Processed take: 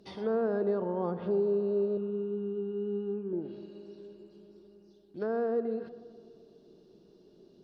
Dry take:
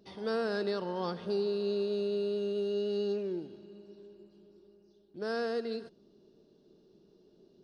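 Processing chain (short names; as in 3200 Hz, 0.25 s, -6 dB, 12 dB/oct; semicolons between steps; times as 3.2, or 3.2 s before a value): treble ducked by the level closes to 890 Hz, closed at -31.5 dBFS; 1.97–3.33 fixed phaser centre 3000 Hz, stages 8; tape echo 0.125 s, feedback 77%, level -14 dB, low-pass 1800 Hz; gain +3.5 dB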